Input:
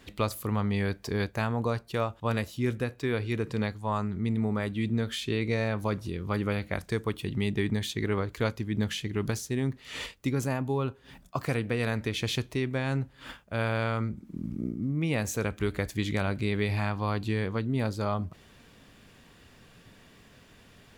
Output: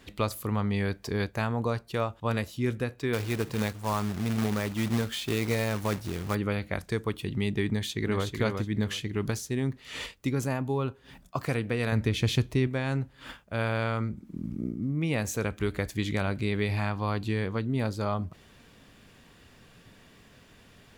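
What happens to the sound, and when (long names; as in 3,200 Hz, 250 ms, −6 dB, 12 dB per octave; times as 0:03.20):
0:03.13–0:06.35: log-companded quantiser 4 bits
0:07.68–0:08.27: delay throw 370 ms, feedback 20%, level −5 dB
0:11.92–0:12.67: low-shelf EQ 230 Hz +9 dB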